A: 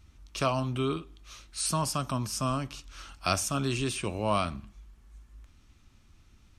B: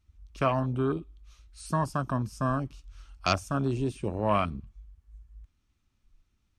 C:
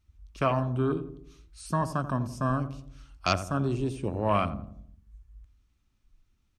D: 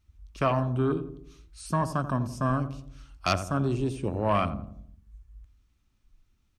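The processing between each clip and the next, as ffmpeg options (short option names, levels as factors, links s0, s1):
-af "afwtdn=0.02,volume=1.26"
-filter_complex "[0:a]asplit=2[s0][s1];[s1]adelay=86,lowpass=f=860:p=1,volume=0.316,asplit=2[s2][s3];[s3]adelay=86,lowpass=f=860:p=1,volume=0.54,asplit=2[s4][s5];[s5]adelay=86,lowpass=f=860:p=1,volume=0.54,asplit=2[s6][s7];[s7]adelay=86,lowpass=f=860:p=1,volume=0.54,asplit=2[s8][s9];[s9]adelay=86,lowpass=f=860:p=1,volume=0.54,asplit=2[s10][s11];[s11]adelay=86,lowpass=f=860:p=1,volume=0.54[s12];[s0][s2][s4][s6][s8][s10][s12]amix=inputs=7:normalize=0"
-af "asoftclip=type=tanh:threshold=0.211,volume=1.19"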